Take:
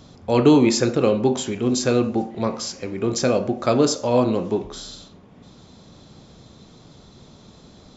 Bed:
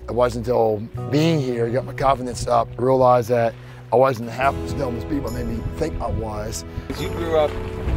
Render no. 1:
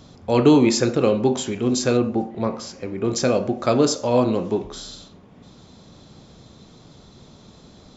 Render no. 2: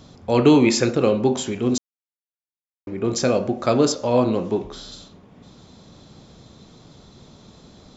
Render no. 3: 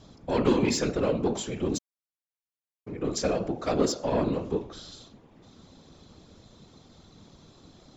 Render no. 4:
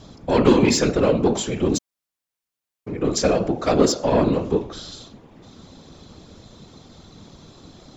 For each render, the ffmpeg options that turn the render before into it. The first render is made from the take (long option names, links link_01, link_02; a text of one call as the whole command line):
ffmpeg -i in.wav -filter_complex "[0:a]asettb=1/sr,asplit=3[link_01][link_02][link_03];[link_01]atrim=end=1.974[link_04];[link_02]atrim=start=1.97:end=3.05,asetpts=PTS-STARTPTS,afade=type=in:duration=0.004:curve=qsin,afade=type=out:start_time=1.076:duration=0.004:curve=qsin,highshelf=frequency=3000:gain=-9[link_05];[link_03]atrim=start=3.046[link_06];[link_04][link_05]acrossfade=duration=0.004:curve1=hsin:curve2=qsin[link_07];[link_07][link_06]acrossfade=duration=0.004:curve1=qsin:curve2=hsin" out.wav
ffmpeg -i in.wav -filter_complex "[0:a]asettb=1/sr,asplit=3[link_01][link_02][link_03];[link_01]atrim=end=0.444[link_04];[link_02]atrim=start=0.44:end=0.91,asetpts=PTS-STARTPTS,afade=type=in:duration=0.004:curve=qsin,afade=type=out:start_time=0.466:duration=0.004:curve=qsin,equalizer=frequency=2300:width_type=o:width=0.77:gain=5[link_05];[link_03]atrim=start=0.906[link_06];[link_04][link_05]acrossfade=duration=0.004:curve1=hsin:curve2=qsin[link_07];[link_07][link_06]acrossfade=duration=0.004:curve1=qsin:curve2=hsin,asettb=1/sr,asplit=3[link_08][link_09][link_10];[link_08]atrim=end=3.924[link_11];[link_09]atrim=start=3.92:end=4.92,asetpts=PTS-STARTPTS,afade=type=in:duration=0.004:curve=qsin,afade=type=out:start_time=0.996:duration=0.004:curve=qsin,acrossover=split=5300[link_12][link_13];[link_13]acompressor=threshold=-54dB:ratio=4:attack=1:release=60[link_14];[link_12][link_14]amix=inputs=2:normalize=0[link_15];[link_10]atrim=start=4.916[link_16];[link_11][link_15]acrossfade=duration=0.004:curve1=hsin:curve2=qsin[link_17];[link_17][link_16]acrossfade=duration=0.004:curve1=qsin:curve2=hsin,asplit=3[link_18][link_19][link_20];[link_18]atrim=end=1.78,asetpts=PTS-STARTPTS,afade=type=out:start_time=1.776:duration=0.004:curve=hsin[link_21];[link_19]atrim=start=1.78:end=2.87,asetpts=PTS-STARTPTS,volume=0[link_22];[link_20]atrim=start=2.87,asetpts=PTS-STARTPTS,afade=type=in:duration=0.004:curve=hsin[link_23];[link_21][link_22][link_23]concat=n=3:v=0:a=1" out.wav
ffmpeg -i in.wav -af "asoftclip=type=tanh:threshold=-11dB,afftfilt=real='hypot(re,im)*cos(2*PI*random(0))':imag='hypot(re,im)*sin(2*PI*random(1))':win_size=512:overlap=0.75" out.wav
ffmpeg -i in.wav -af "volume=8dB" out.wav